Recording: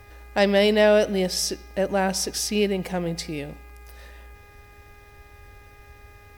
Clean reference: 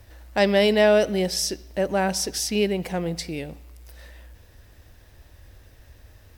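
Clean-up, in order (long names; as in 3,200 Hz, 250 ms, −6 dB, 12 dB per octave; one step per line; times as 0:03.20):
clipped peaks rebuilt −9.5 dBFS
hum removal 409.8 Hz, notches 6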